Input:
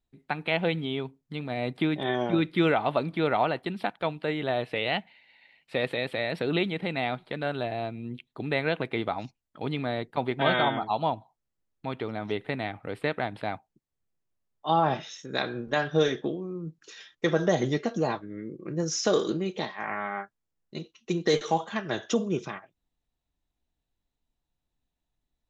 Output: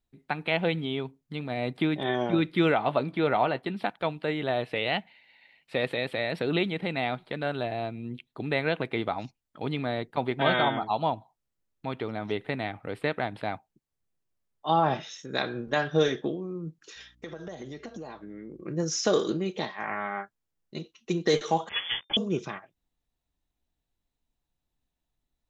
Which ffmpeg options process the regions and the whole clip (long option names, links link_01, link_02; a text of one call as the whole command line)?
ffmpeg -i in.wav -filter_complex "[0:a]asettb=1/sr,asplit=3[link_01][link_02][link_03];[link_01]atrim=end=2.774[link_04];[link_02]atrim=start=2.77:end=3.83,asetpts=PTS-STARTPTS,afade=type=in:duration=0.004:curve=qsin,afade=type=out:start_time=1.056:duration=0.004:curve=qsin,highpass=52,highshelf=frequency=6300:gain=-6.5,asplit=2[link_05][link_06];[link_06]adelay=15,volume=-13dB[link_07];[link_05][link_07]amix=inputs=2:normalize=0,atrim=end_sample=46746[link_08];[link_03]atrim=start=3.826[link_09];[link_04][link_08]acrossfade=duration=0.004:curve1=hsin:curve2=qsin[link_10];[link_10][link_09]acrossfade=duration=0.004:curve1=qsin:curve2=hsin,asettb=1/sr,asplit=3[link_11][link_12][link_13];[link_11]atrim=end=16.964[link_14];[link_12]atrim=start=16.96:end=18.62,asetpts=PTS-STARTPTS,afade=type=in:duration=0.004:curve=qsin,afade=type=out:start_time=1.656:duration=0.004:curve=qsin,highpass=140,acompressor=threshold=-37dB:ratio=6:attack=3.2:release=140:knee=1:detection=peak,aeval=exprs='val(0)+0.000708*(sin(2*PI*60*n/s)+sin(2*PI*2*60*n/s)/2+sin(2*PI*3*60*n/s)/3+sin(2*PI*4*60*n/s)/4+sin(2*PI*5*60*n/s)/5)':channel_layout=same[link_15];[link_13]atrim=start=18.616[link_16];[link_14][link_15]acrossfade=duration=0.004:curve1=hsin:curve2=qsin[link_17];[link_17][link_16]acrossfade=duration=0.004:curve1=qsin:curve2=hsin,asettb=1/sr,asplit=3[link_18][link_19][link_20];[link_18]atrim=end=21.694[link_21];[link_19]atrim=start=21.69:end=22.17,asetpts=PTS-STARTPTS,afade=type=in:duration=0.004:curve=qsin,afade=type=out:start_time=0.476:duration=0.004:curve=qsin,bandreject=frequency=440:width=6.3,acrusher=bits=5:mix=0:aa=0.5,lowpass=frequency=3100:width_type=q:width=0.5098,lowpass=frequency=3100:width_type=q:width=0.6013,lowpass=frequency=3100:width_type=q:width=0.9,lowpass=frequency=3100:width_type=q:width=2.563,afreqshift=-3600[link_22];[link_20]atrim=start=22.166[link_23];[link_21][link_22]acrossfade=duration=0.004:curve1=hsin:curve2=qsin[link_24];[link_24][link_23]acrossfade=duration=0.004:curve1=qsin:curve2=hsin" out.wav